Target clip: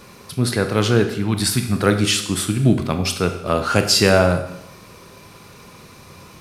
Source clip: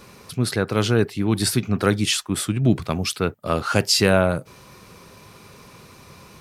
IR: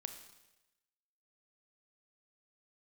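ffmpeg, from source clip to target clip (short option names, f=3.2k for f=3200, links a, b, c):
-filter_complex "[0:a]asettb=1/sr,asplit=3[a][b][c];[a]atrim=end=1.144[d];[b]atrim=start=1.14:end=1.75,asetpts=PTS-STARTPTS,afade=t=in:d=0.004:c=qsin,afade=t=out:st=0.606:d=0.004:c=qsin,equalizer=f=430:w=1.5:g=-8.5[e];[c]atrim=start=1.746[f];[d][e]acrossfade=d=0.004:c1=hsin:c2=qsin[g];[g][f]acrossfade=d=0.004:c1=qsin:c2=hsin[h];[1:a]atrim=start_sample=2205,asetrate=52920,aresample=44100[i];[h][i]afir=irnorm=-1:irlink=0,volume=7.5dB"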